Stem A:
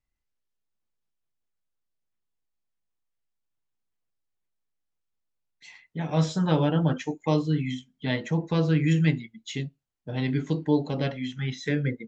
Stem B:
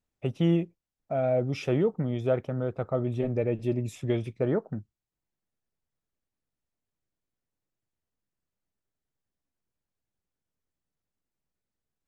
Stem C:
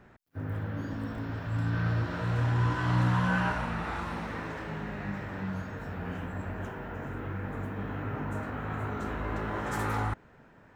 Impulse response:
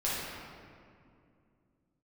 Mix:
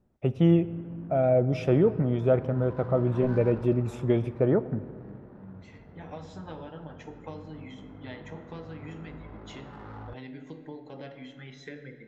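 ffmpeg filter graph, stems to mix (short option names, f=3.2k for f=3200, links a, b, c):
-filter_complex "[0:a]acompressor=threshold=-28dB:ratio=6,highpass=f=500:p=1,volume=-6dB,asplit=2[a][b];[b]volume=-14dB[c];[1:a]volume=3dB,asplit=2[d][e];[e]volume=-22dB[f];[2:a]adynamicsmooth=sensitivity=2.5:basefreq=600,flanger=delay=3.3:depth=2:regen=-77:speed=1.6:shape=triangular,volume=-6.5dB[g];[3:a]atrim=start_sample=2205[h];[c][f]amix=inputs=2:normalize=0[i];[i][h]afir=irnorm=-1:irlink=0[j];[a][d][g][j]amix=inputs=4:normalize=0,highshelf=f=2.6k:g=-10.5"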